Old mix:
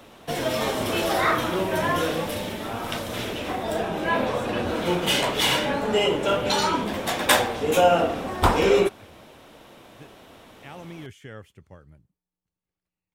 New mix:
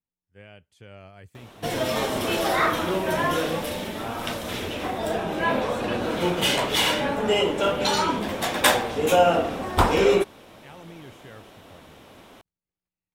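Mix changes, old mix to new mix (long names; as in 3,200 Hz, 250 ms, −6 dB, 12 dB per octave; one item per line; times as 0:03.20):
speech −4.5 dB
background: entry +1.35 s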